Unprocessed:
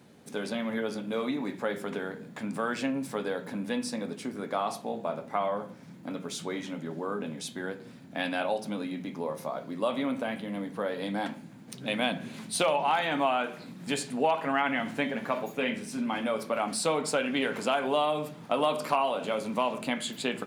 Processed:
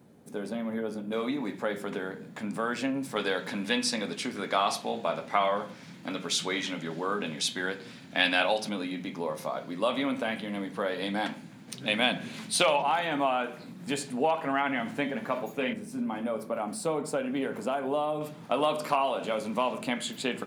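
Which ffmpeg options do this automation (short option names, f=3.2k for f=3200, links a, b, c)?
-af "asetnsamples=n=441:p=0,asendcmd='1.12 equalizer g 0.5;3.16 equalizer g 11.5;8.69 equalizer g 5.5;12.82 equalizer g -2;15.73 equalizer g -11;18.21 equalizer g 0',equalizer=f=3.5k:t=o:w=2.9:g=-9.5"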